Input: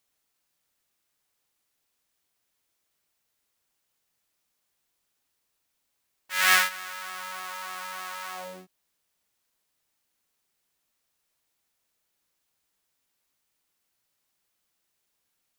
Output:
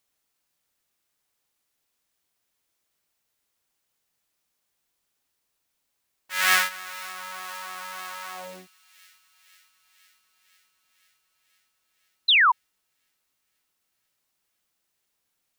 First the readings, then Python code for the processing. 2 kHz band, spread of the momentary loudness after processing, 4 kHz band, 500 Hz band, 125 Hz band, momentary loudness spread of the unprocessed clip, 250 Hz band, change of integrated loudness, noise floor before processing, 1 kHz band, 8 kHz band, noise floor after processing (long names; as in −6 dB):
+3.5 dB, 19 LU, +6.5 dB, 0.0 dB, can't be measured, 17 LU, 0.0 dB, +3.0 dB, −78 dBFS, +5.5 dB, 0.0 dB, −78 dBFS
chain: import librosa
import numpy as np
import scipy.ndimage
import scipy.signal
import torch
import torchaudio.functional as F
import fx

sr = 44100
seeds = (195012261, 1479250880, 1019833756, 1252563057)

y = fx.echo_wet_highpass(x, sr, ms=502, feedback_pct=72, hz=2700.0, wet_db=-20)
y = fx.spec_paint(y, sr, seeds[0], shape='fall', start_s=12.28, length_s=0.24, low_hz=900.0, high_hz=4200.0, level_db=-17.0)